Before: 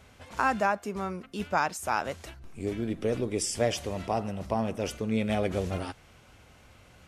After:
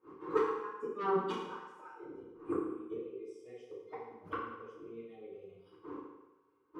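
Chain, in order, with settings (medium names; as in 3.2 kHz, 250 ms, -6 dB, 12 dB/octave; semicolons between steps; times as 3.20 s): rattle on loud lows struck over -33 dBFS, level -29 dBFS; wind noise 500 Hz -39 dBFS; gate -42 dBFS, range -20 dB; spectral noise reduction 24 dB; inverted gate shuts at -29 dBFS, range -39 dB; sine folder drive 13 dB, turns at -27 dBFS; FDN reverb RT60 1.1 s, low-frequency decay 0.85×, high-frequency decay 0.85×, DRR -9 dB; speed mistake 24 fps film run at 25 fps; two resonant band-passes 660 Hz, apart 1.5 oct; trim +5 dB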